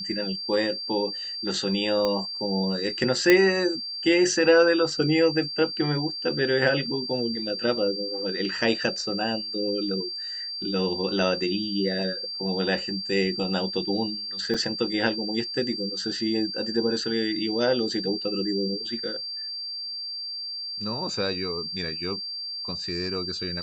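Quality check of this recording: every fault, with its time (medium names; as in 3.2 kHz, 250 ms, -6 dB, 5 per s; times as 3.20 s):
whine 4.7 kHz -31 dBFS
2.05 s: pop -13 dBFS
3.30 s: pop -4 dBFS
14.54–14.55 s: dropout 5.2 ms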